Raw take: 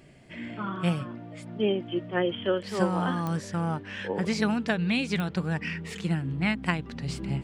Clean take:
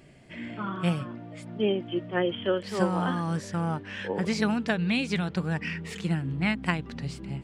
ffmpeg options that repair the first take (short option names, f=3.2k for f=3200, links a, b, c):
-af "adeclick=t=4,asetnsamples=n=441:p=0,asendcmd='7.08 volume volume -5dB',volume=0dB"